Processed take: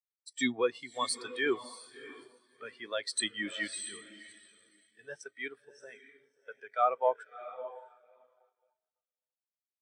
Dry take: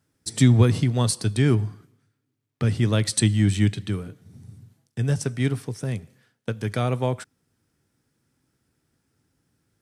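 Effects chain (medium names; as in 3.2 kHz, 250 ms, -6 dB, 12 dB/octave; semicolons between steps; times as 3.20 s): median filter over 3 samples; high-pass 840 Hz 12 dB/octave; echo that smears into a reverb 647 ms, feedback 50%, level -6 dB; transient shaper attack -4 dB, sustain 0 dB; waveshaping leveller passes 2; in parallel at -7.5 dB: small samples zeroed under -38.5 dBFS; on the sum: spectral contrast expander 2.5:1; trim -3 dB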